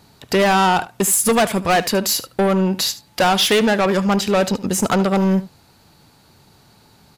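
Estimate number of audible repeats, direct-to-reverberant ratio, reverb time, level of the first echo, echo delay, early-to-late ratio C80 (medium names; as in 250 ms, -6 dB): 1, no reverb, no reverb, -16.5 dB, 74 ms, no reverb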